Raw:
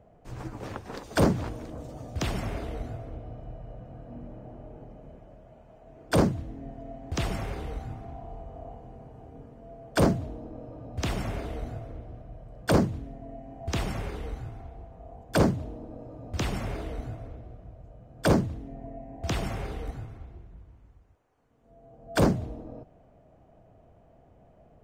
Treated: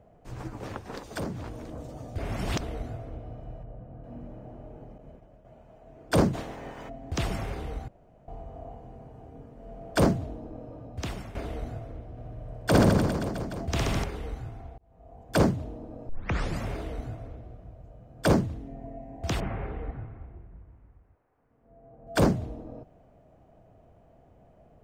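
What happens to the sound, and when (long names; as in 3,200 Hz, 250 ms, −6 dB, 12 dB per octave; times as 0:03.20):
0:00.98–0:01.66: downward compressor 2.5 to 1, threshold −35 dBFS
0:02.18–0:02.61: reverse
0:03.63–0:04.04: head-to-tape spacing loss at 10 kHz 32 dB
0:04.98–0:05.45: downward expander −46 dBFS
0:06.33–0:06.88: ceiling on every frequency bin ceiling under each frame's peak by 27 dB
0:07.88–0:08.28: fill with room tone
0:09.52–0:09.94: thrown reverb, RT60 3 s, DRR −3.5 dB
0:10.74–0:11.35: fade out, to −12.5 dB
0:12.11–0:14.04: reverse bouncing-ball delay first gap 60 ms, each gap 1.15×, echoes 8, each echo −2 dB
0:14.78–0:15.31: fade in linear
0:16.09: tape start 0.53 s
0:19.40–0:22.07: low-pass filter 2,300 Hz 24 dB per octave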